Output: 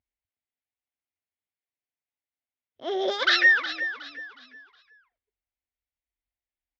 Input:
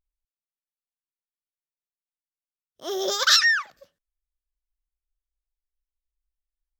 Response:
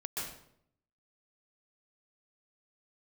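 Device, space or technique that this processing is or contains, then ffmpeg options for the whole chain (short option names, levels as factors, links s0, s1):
frequency-shifting delay pedal into a guitar cabinet: -filter_complex "[0:a]asplit=5[s0][s1][s2][s3][s4];[s1]adelay=365,afreqshift=-32,volume=0.266[s5];[s2]adelay=730,afreqshift=-64,volume=0.0902[s6];[s3]adelay=1095,afreqshift=-96,volume=0.0309[s7];[s4]adelay=1460,afreqshift=-128,volume=0.0105[s8];[s0][s5][s6][s7][s8]amix=inputs=5:normalize=0,highpass=76,equalizer=f=93:t=q:w=4:g=10,equalizer=f=180:t=q:w=4:g=-9,equalizer=f=250:t=q:w=4:g=7,equalizer=f=730:t=q:w=4:g=5,equalizer=f=1200:t=q:w=4:g=-6,equalizer=f=2100:t=q:w=4:g=7,lowpass=f=3600:w=0.5412,lowpass=f=3600:w=1.3066"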